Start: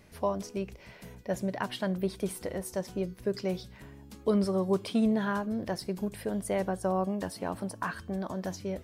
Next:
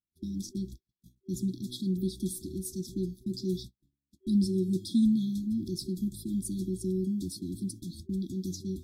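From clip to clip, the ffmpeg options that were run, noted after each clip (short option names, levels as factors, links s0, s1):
-af "agate=range=0.00631:threshold=0.00708:ratio=16:detection=peak,afftfilt=real='re*(1-between(b*sr/4096,380,3300))':imag='im*(1-between(b*sr/4096,380,3300))':win_size=4096:overlap=0.75,volume=1.33"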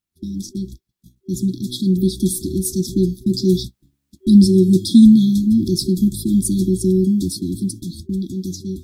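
-af "dynaudnorm=f=520:g=7:m=2.37,volume=2.66"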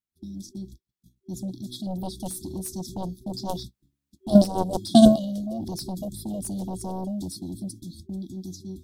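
-af "aeval=exprs='0.841*(cos(1*acos(clip(val(0)/0.841,-1,1)))-cos(1*PI/2))+0.376*(cos(3*acos(clip(val(0)/0.841,-1,1)))-cos(3*PI/2))+0.0119*(cos(7*acos(clip(val(0)/0.841,-1,1)))-cos(7*PI/2))':c=same,volume=0.708"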